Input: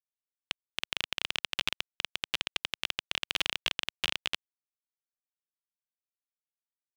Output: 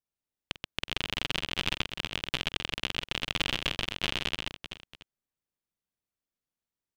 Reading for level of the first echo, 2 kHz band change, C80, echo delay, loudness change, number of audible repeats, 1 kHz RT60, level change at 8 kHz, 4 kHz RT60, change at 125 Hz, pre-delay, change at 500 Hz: -16.5 dB, +2.0 dB, none, 47 ms, +1.5 dB, 4, none, -0.5 dB, none, +13.0 dB, none, +7.0 dB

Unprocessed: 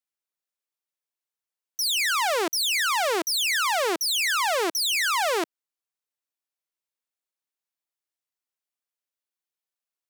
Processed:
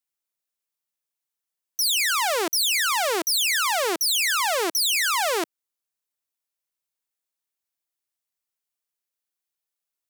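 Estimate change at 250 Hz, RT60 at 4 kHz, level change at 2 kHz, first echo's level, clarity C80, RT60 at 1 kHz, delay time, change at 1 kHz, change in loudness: 0.0 dB, none, +0.5 dB, none, none, none, none, 0.0 dB, +2.0 dB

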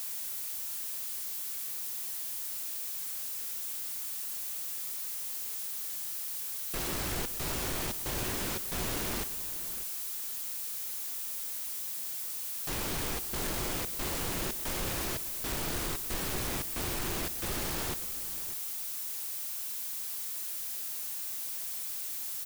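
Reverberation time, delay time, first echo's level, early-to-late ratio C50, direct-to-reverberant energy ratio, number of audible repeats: none, 66 ms, -18.0 dB, none, none, 3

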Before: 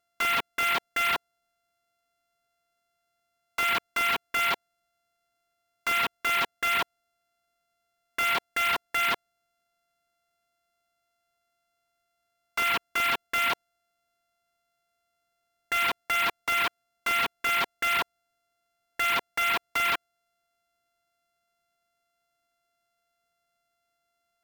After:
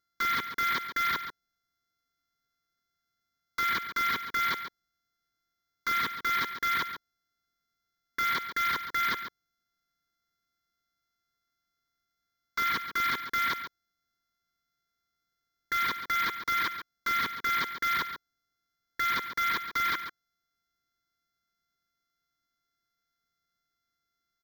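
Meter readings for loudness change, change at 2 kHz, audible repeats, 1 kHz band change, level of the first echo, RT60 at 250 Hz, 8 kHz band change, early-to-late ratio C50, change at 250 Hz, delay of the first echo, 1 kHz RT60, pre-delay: -3.0 dB, -3.0 dB, 1, -1.5 dB, -10.5 dB, none, -6.5 dB, none, -1.0 dB, 0.139 s, none, none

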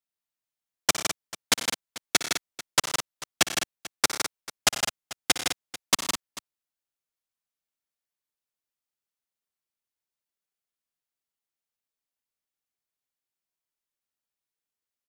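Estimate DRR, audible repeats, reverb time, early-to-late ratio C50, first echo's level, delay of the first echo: none, 5, none, none, -15.0 dB, 59 ms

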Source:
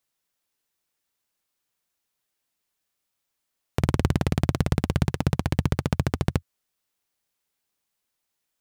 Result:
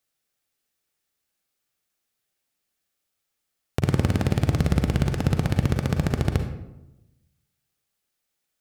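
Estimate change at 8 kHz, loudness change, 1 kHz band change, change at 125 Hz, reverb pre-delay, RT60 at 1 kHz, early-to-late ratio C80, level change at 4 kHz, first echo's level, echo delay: +0.5 dB, +1.5 dB, -0.5 dB, +2.0 dB, 37 ms, 0.85 s, 9.5 dB, +0.5 dB, none, none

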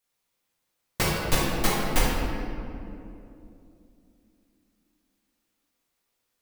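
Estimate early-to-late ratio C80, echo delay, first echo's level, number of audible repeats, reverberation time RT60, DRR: 0.0 dB, none, none, none, 2.9 s, -7.5 dB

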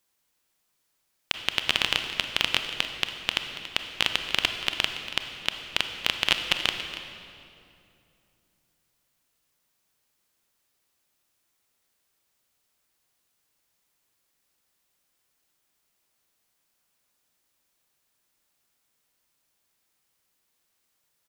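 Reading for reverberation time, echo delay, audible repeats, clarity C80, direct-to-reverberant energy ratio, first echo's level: 2.6 s, 0.282 s, 1, 7.0 dB, 5.5 dB, -15.0 dB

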